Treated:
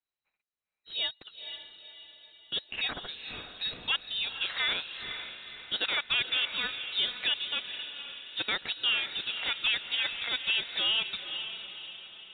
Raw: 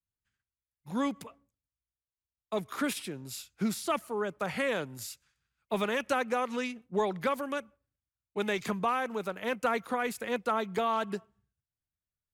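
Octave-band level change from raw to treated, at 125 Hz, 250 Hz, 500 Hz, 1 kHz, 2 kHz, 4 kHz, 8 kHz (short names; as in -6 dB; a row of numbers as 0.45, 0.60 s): -12.0 dB, -17.5 dB, -16.0 dB, -10.5 dB, +4.5 dB, +16.5 dB, under -35 dB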